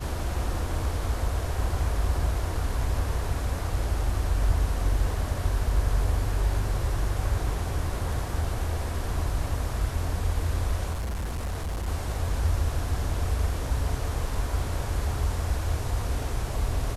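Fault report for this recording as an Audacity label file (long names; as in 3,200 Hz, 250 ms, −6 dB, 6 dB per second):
10.910000	11.880000	clipping −27 dBFS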